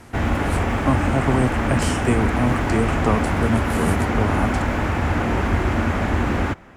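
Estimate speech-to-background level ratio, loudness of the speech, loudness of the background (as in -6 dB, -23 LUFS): -2.0 dB, -24.0 LUFS, -22.0 LUFS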